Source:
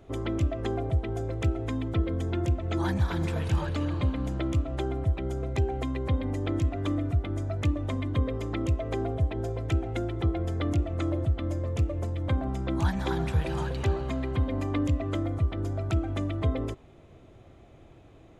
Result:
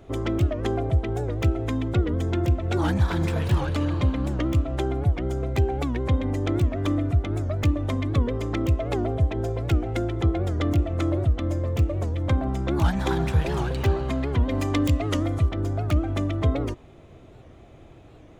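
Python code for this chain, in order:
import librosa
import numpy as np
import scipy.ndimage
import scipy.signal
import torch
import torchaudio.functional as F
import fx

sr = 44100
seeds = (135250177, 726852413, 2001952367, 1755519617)

y = fx.tracing_dist(x, sr, depth_ms=0.075)
y = fx.high_shelf(y, sr, hz=2800.0, db=9.5, at=(14.49, 15.49))
y = fx.record_warp(y, sr, rpm=78.0, depth_cents=160.0)
y = y * librosa.db_to_amplitude(4.5)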